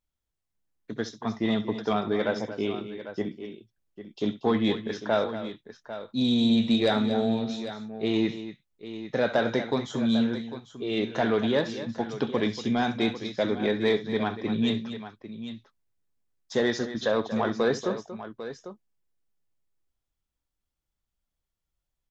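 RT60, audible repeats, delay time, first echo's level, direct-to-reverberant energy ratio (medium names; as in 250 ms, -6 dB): no reverb, 3, 66 ms, -15.5 dB, no reverb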